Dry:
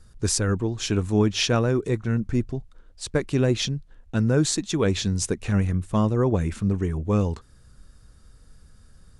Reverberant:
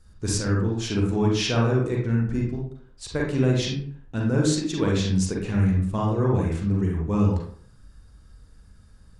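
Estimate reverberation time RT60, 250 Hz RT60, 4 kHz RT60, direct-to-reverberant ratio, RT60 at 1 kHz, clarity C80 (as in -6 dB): 0.55 s, 0.55 s, 0.30 s, -2.5 dB, 0.55 s, 7.5 dB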